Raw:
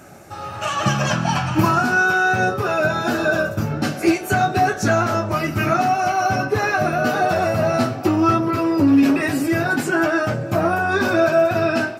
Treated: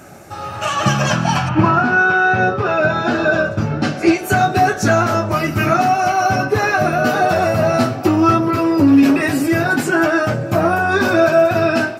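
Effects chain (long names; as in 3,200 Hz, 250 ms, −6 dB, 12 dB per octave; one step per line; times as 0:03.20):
0:01.48–0:04.17: low-pass filter 2,500 Hz → 6,200 Hz 12 dB per octave
level +3.5 dB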